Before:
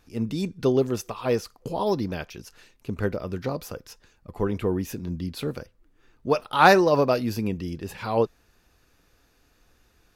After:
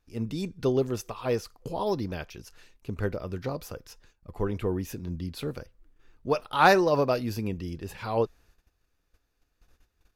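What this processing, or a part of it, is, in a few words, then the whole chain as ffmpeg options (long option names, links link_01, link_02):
low shelf boost with a cut just above: -af "lowshelf=frequency=65:gain=8,equalizer=frequency=210:width_type=o:width=0.77:gain=-2.5,agate=range=-12dB:threshold=-54dB:ratio=16:detection=peak,volume=-3.5dB"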